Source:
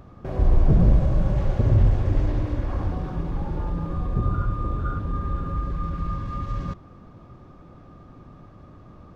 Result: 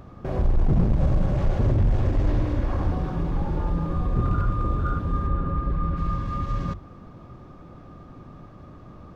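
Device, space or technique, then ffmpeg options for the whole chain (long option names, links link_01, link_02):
limiter into clipper: -filter_complex "[0:a]alimiter=limit=-14dB:level=0:latency=1:release=34,asoftclip=type=hard:threshold=-17.5dB,bandreject=frequency=50:width_type=h:width=6,bandreject=frequency=100:width_type=h:width=6,asettb=1/sr,asplit=3[link_01][link_02][link_03];[link_01]atrim=end=5.274[link_04];[link_02]atrim=start=5.27:end=5.97,asetpts=PTS-STARTPTS,afade=type=in:duration=0.004:curve=qsin,afade=type=out:start_time=0.696:duration=0.004:curve=qsin,aemphasis=mode=reproduction:type=75fm[link_05];[link_03]atrim=start=5.966[link_06];[link_04][link_05]acrossfade=duration=0.004:curve1=hsin:curve2=qsin[link_07];[link_07][link_06]acrossfade=duration=0.004:curve1=qsin:curve2=hsin,volume=2.5dB"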